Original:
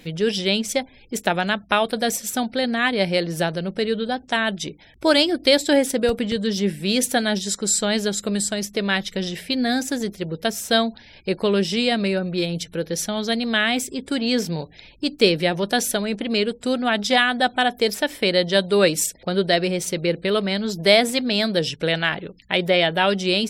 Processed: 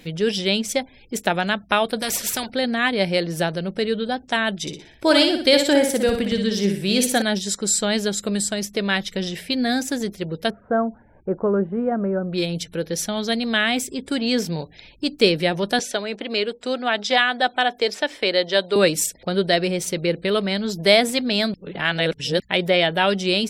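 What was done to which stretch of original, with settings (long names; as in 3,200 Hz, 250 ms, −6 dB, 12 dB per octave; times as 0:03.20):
0:02.02–0:02.50: every bin compressed towards the loudest bin 2 to 1
0:04.61–0:07.22: repeating echo 60 ms, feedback 39%, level −6 dB
0:10.50–0:12.33: elliptic low-pass filter 1,400 Hz, stop band 80 dB
0:15.79–0:18.76: three-way crossover with the lows and the highs turned down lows −14 dB, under 290 Hz, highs −22 dB, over 7,500 Hz
0:21.54–0:22.40: reverse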